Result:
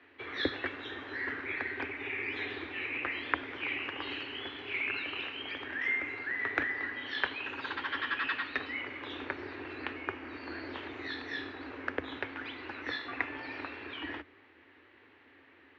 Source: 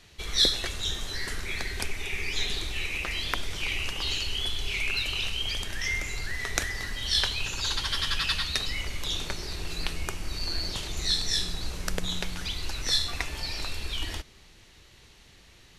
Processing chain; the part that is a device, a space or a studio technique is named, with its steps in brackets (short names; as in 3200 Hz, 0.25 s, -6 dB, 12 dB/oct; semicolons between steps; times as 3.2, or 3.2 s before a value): steep high-pass 260 Hz 48 dB/oct; sub-octave bass pedal (octaver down 2 oct, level -3 dB; speaker cabinet 66–2300 Hz, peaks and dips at 180 Hz -7 dB, 270 Hz +9 dB, 650 Hz -4 dB, 1700 Hz +4 dB)